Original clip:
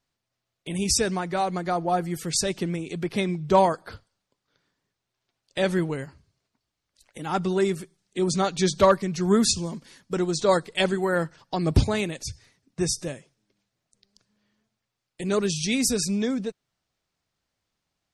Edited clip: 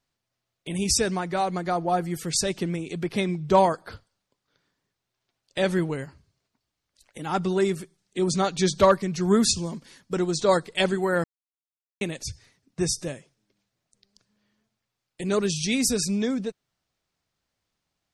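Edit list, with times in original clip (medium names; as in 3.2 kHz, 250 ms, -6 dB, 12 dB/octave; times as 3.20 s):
11.24–12.01 s: mute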